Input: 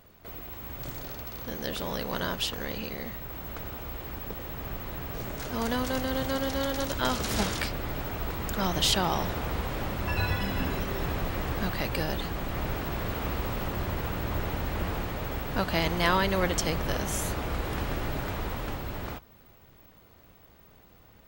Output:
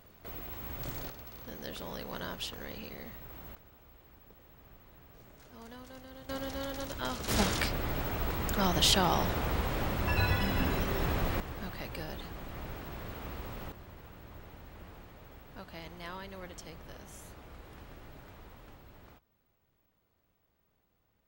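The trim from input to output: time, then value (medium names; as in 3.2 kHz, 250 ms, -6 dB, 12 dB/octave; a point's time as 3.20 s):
-1.5 dB
from 1.10 s -8.5 dB
from 3.55 s -20 dB
from 6.29 s -8.5 dB
from 7.28 s -0.5 dB
from 11.40 s -10.5 dB
from 13.72 s -19 dB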